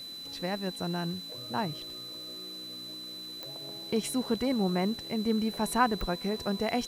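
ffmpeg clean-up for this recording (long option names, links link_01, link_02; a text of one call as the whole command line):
ffmpeg -i in.wav -af "adeclick=threshold=4,bandreject=frequency=4000:width=30,afwtdn=0.002" out.wav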